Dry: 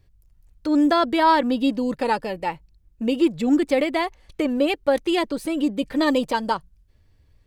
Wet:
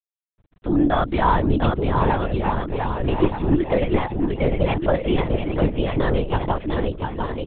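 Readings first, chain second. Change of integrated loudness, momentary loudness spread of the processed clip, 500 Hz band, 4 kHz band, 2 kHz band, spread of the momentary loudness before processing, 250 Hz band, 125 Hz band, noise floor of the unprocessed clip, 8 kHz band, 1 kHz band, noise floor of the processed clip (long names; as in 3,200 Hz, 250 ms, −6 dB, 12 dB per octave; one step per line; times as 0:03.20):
0.0 dB, 6 LU, +1.0 dB, −5.0 dB, −1.5 dB, 10 LU, −1.0 dB, +21.5 dB, −59 dBFS, below −35 dB, 0.0 dB, below −85 dBFS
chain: noise gate with hold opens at −46 dBFS
high-shelf EQ 2,100 Hz −6 dB
centre clipping without the shift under −47.5 dBFS
bouncing-ball delay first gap 700 ms, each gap 0.75×, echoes 5
linear-prediction vocoder at 8 kHz whisper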